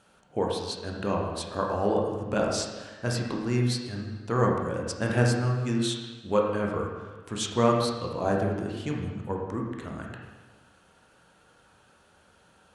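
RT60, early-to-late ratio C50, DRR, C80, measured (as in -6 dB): 1.3 s, 1.5 dB, -1.0 dB, 4.0 dB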